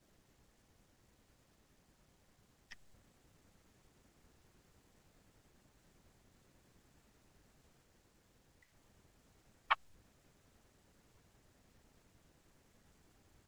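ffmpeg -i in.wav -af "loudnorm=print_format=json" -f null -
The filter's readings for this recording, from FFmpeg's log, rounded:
"input_i" : "-41.0",
"input_tp" : "-14.0",
"input_lra" : "22.7",
"input_thresh" : "-62.9",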